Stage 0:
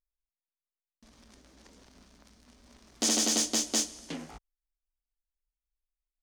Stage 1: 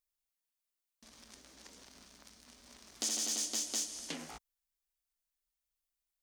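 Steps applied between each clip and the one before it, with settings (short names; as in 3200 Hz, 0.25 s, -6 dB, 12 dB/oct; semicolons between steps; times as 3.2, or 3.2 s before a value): limiter -22 dBFS, peak gain reduction 8 dB; compressor 5:1, threshold -37 dBFS, peak gain reduction 8.5 dB; tilt +2 dB/oct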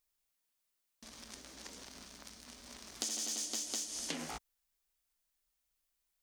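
compressor 12:1, threshold -40 dBFS, peak gain reduction 10 dB; gain +5.5 dB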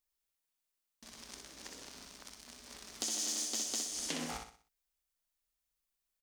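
sample leveller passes 1; on a send: feedback echo 62 ms, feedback 38%, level -5 dB; on the sum: gain -3 dB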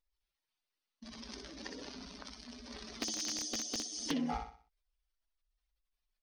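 spectral contrast raised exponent 2; wrapped overs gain 27 dB; polynomial smoothing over 15 samples; gain +5.5 dB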